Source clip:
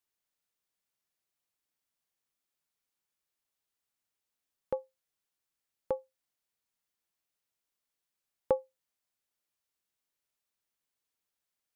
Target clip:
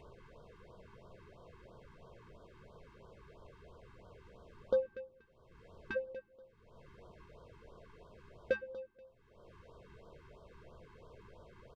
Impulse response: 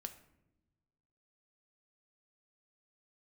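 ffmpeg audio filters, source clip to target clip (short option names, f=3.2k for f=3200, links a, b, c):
-filter_complex "[0:a]aecho=1:1:1.9:0.69,acompressor=mode=upward:threshold=-26dB:ratio=2.5,asoftclip=type=tanh:threshold=-35.5dB,adynamicsmooth=sensitivity=2:basefreq=730,aecho=1:1:240|480:0.178|0.0409,asplit=2[a][b];[1:a]atrim=start_sample=2205,asetrate=52920,aresample=44100[c];[b][c]afir=irnorm=-1:irlink=0,volume=2dB[d];[a][d]amix=inputs=2:normalize=0,afftfilt=real='re*(1-between(b*sr/1024,570*pow(2200/570,0.5+0.5*sin(2*PI*3*pts/sr))/1.41,570*pow(2200/570,0.5+0.5*sin(2*PI*3*pts/sr))*1.41))':imag='im*(1-between(b*sr/1024,570*pow(2200/570,0.5+0.5*sin(2*PI*3*pts/sr))/1.41,570*pow(2200/570,0.5+0.5*sin(2*PI*3*pts/sr))*1.41))':win_size=1024:overlap=0.75,volume=8dB"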